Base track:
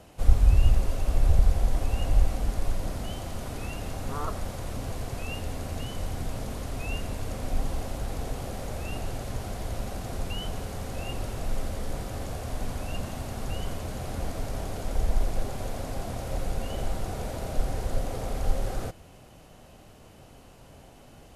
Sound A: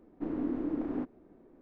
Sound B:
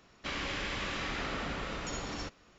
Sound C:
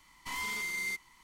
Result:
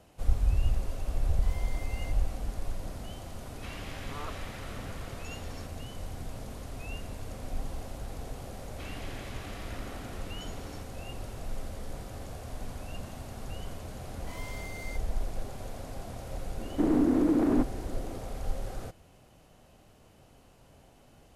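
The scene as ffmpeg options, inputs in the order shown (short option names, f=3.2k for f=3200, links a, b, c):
-filter_complex "[3:a]asplit=2[a][b];[2:a]asplit=2[c][d];[0:a]volume=-7dB[e];[d]highpass=f=250:t=q:w=2.1[f];[1:a]alimiter=level_in=30.5dB:limit=-1dB:release=50:level=0:latency=1[g];[a]atrim=end=1.23,asetpts=PTS-STARTPTS,volume=-14.5dB,afade=t=in:d=0.004:c=hsin,afade=t=out:st=1.226:d=0.004:c=hsin,adelay=1160[h];[c]atrim=end=2.58,asetpts=PTS-STARTPTS,volume=-9.5dB,afade=t=in:d=0.004:c=hsin,afade=t=out:st=2.576:d=0.004:c=hsin,adelay=3380[i];[f]atrim=end=2.58,asetpts=PTS-STARTPTS,volume=-11dB,afade=t=in:d=0.004:c=hsin,afade=t=out:st=2.576:d=0.004:c=hsin,adelay=8540[j];[b]atrim=end=1.23,asetpts=PTS-STARTPTS,volume=-10dB,afade=t=in:d=0.004:c=hsin,afade=t=out:st=1.226:d=0.004:c=hsin,adelay=14010[k];[g]atrim=end=1.61,asetpts=PTS-STARTPTS,volume=-16.5dB,afade=t=in:d=0.004:c=hsin,afade=t=out:st=1.606:d=0.004:c=hsin,adelay=16580[l];[e][h][i][j][k][l]amix=inputs=6:normalize=0"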